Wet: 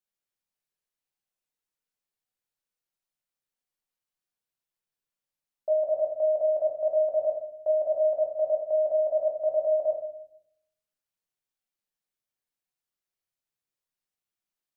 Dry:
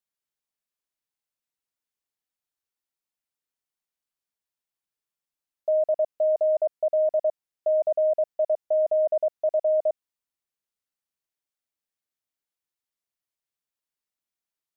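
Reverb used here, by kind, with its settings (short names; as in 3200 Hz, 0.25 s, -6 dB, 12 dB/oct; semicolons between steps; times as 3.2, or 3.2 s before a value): shoebox room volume 150 m³, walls mixed, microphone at 1 m; gain -4 dB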